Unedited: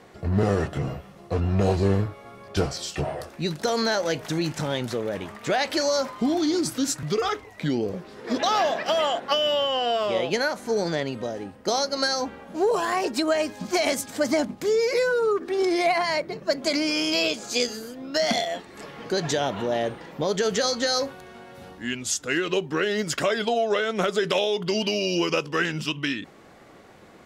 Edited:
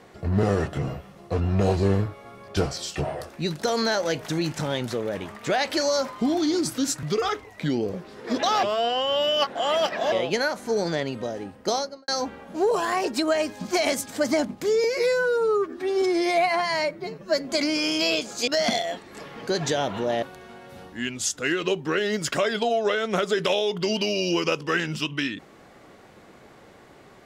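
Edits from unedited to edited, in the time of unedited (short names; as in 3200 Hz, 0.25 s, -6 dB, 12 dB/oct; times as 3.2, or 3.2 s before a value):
8.63–10.12 reverse
11.69–12.08 studio fade out
14.84–16.59 stretch 1.5×
17.6–18.1 cut
19.85–21.08 cut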